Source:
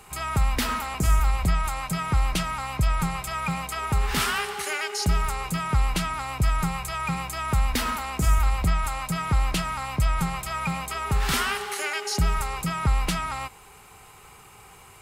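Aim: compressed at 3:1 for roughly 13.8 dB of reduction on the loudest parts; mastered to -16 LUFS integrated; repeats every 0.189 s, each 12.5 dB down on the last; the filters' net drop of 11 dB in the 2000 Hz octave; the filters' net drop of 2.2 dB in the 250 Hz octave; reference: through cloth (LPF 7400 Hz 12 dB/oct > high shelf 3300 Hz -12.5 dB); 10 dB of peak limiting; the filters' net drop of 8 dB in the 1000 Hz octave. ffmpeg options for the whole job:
-af "equalizer=f=250:t=o:g=-3.5,equalizer=f=1k:t=o:g=-6,equalizer=f=2k:t=o:g=-8,acompressor=threshold=-36dB:ratio=3,alimiter=level_in=7.5dB:limit=-24dB:level=0:latency=1,volume=-7.5dB,lowpass=7.4k,highshelf=f=3.3k:g=-12.5,aecho=1:1:189|378|567:0.237|0.0569|0.0137,volume=26dB"

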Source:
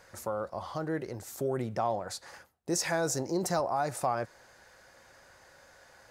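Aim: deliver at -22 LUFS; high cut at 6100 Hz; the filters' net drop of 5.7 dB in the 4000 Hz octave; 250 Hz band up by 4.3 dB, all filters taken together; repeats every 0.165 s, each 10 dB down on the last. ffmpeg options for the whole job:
-af "lowpass=6.1k,equalizer=f=250:t=o:g=6.5,equalizer=f=4k:t=o:g=-6,aecho=1:1:165|330|495|660:0.316|0.101|0.0324|0.0104,volume=9dB"

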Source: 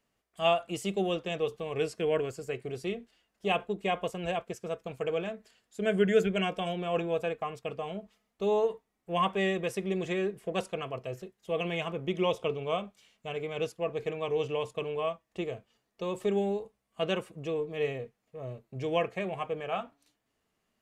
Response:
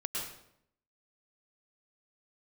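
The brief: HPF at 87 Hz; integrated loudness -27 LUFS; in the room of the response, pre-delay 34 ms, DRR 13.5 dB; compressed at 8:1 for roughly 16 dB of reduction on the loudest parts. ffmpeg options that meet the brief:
-filter_complex "[0:a]highpass=87,acompressor=threshold=-36dB:ratio=8,asplit=2[a][b];[1:a]atrim=start_sample=2205,adelay=34[c];[b][c]afir=irnorm=-1:irlink=0,volume=-17dB[d];[a][d]amix=inputs=2:normalize=0,volume=14.5dB"

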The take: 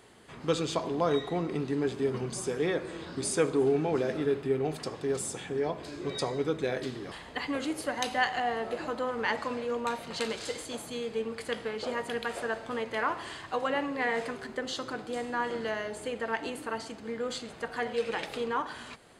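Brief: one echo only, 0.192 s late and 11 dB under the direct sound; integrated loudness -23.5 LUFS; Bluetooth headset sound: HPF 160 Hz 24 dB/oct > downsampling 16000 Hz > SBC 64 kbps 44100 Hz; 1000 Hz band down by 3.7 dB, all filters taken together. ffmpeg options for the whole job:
-af "highpass=f=160:w=0.5412,highpass=f=160:w=1.3066,equalizer=f=1k:t=o:g=-5,aecho=1:1:192:0.282,aresample=16000,aresample=44100,volume=9.5dB" -ar 44100 -c:a sbc -b:a 64k

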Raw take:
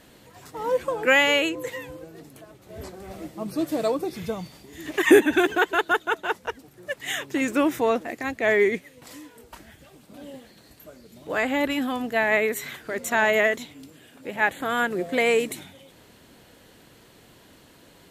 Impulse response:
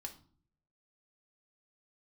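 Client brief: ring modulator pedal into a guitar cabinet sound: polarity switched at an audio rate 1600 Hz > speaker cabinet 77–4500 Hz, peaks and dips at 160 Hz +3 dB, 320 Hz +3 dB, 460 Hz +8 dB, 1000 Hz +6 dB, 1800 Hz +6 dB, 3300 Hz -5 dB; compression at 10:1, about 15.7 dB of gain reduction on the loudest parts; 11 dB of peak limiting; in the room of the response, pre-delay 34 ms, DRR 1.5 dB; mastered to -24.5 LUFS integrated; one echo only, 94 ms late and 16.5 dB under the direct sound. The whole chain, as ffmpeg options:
-filter_complex "[0:a]acompressor=threshold=-25dB:ratio=10,alimiter=level_in=1.5dB:limit=-24dB:level=0:latency=1,volume=-1.5dB,aecho=1:1:94:0.15,asplit=2[a][b];[1:a]atrim=start_sample=2205,adelay=34[c];[b][c]afir=irnorm=-1:irlink=0,volume=2.5dB[d];[a][d]amix=inputs=2:normalize=0,aeval=exprs='val(0)*sgn(sin(2*PI*1600*n/s))':c=same,highpass=77,equalizer=f=160:t=q:w=4:g=3,equalizer=f=320:t=q:w=4:g=3,equalizer=f=460:t=q:w=4:g=8,equalizer=f=1k:t=q:w=4:g=6,equalizer=f=1.8k:t=q:w=4:g=6,equalizer=f=3.3k:t=q:w=4:g=-5,lowpass=f=4.5k:w=0.5412,lowpass=f=4.5k:w=1.3066,volume=5.5dB"

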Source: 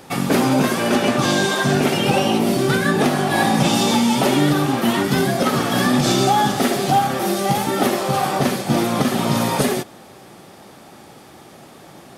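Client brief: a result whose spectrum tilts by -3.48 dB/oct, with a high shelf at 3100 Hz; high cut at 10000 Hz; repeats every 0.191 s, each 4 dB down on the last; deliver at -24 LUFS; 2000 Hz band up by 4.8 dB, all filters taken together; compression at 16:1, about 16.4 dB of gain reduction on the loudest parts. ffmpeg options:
-af "lowpass=10k,equalizer=f=2k:t=o:g=3.5,highshelf=f=3.1k:g=8,acompressor=threshold=-28dB:ratio=16,aecho=1:1:191|382|573|764|955|1146|1337|1528|1719:0.631|0.398|0.25|0.158|0.0994|0.0626|0.0394|0.0249|0.0157,volume=5.5dB"

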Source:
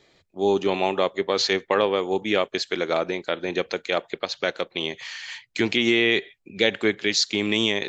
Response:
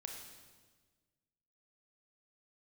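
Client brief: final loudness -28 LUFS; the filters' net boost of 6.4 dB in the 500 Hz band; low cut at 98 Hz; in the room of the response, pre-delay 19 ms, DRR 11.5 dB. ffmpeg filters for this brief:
-filter_complex "[0:a]highpass=98,equalizer=f=500:t=o:g=8,asplit=2[a][b];[1:a]atrim=start_sample=2205,adelay=19[c];[b][c]afir=irnorm=-1:irlink=0,volume=-8.5dB[d];[a][d]amix=inputs=2:normalize=0,volume=-8.5dB"

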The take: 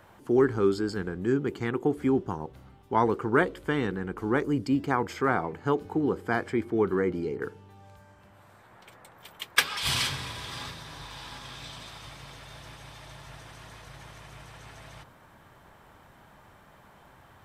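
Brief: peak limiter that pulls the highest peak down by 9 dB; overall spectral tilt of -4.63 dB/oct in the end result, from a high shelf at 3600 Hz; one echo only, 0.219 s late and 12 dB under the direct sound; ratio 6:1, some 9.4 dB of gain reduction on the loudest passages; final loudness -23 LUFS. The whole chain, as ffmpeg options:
-af "highshelf=f=3.6k:g=-7,acompressor=threshold=-27dB:ratio=6,alimiter=limit=-22.5dB:level=0:latency=1,aecho=1:1:219:0.251,volume=12dB"

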